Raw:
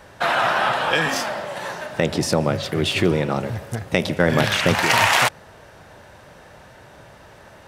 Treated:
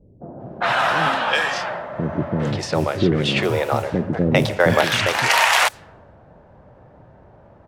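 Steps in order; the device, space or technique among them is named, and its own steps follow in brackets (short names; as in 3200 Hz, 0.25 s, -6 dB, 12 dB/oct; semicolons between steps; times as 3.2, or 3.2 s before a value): 1.49–2.08 spectral repair 510–5800 Hz before; 2.94–4.44 bell 580 Hz +5 dB 2.3 oct; cassette deck with a dynamic noise filter (white noise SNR 25 dB; low-pass opened by the level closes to 590 Hz, open at -14 dBFS); bands offset in time lows, highs 0.4 s, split 410 Hz; gain +1 dB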